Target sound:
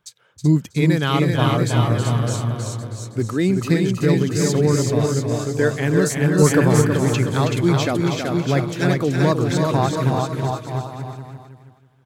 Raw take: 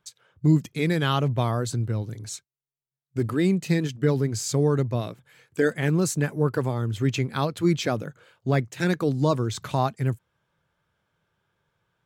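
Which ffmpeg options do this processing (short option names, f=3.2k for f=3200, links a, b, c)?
-filter_complex "[0:a]asplit=2[a][b];[b]aecho=0:1:380|684|927.2|1122|1277:0.631|0.398|0.251|0.158|0.1[c];[a][c]amix=inputs=2:normalize=0,asettb=1/sr,asplit=3[d][e][f];[d]atrim=end=6.384[g];[e]atrim=start=6.38:end=6.82,asetpts=PTS-STARTPTS,afade=t=in:d=0.004:c=qsin,afade=t=out:st=0.436:d=0.004:c=qsin,acontrast=35[h];[f]atrim=start=6.816[i];[g][h]acrossfade=d=0.004:c1=hsin:c2=qsin[j];[j][i]acrossfade=d=0.004:c1=qsin:c2=hsin,asplit=2[k][l];[l]aecho=0:1:321|642|963:0.473|0.114|0.0273[m];[k][m]amix=inputs=2:normalize=0,volume=3dB"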